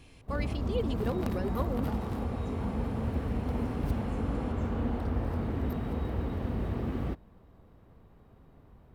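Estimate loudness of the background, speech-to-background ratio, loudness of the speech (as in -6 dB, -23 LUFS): -33.5 LUFS, -3.0 dB, -36.5 LUFS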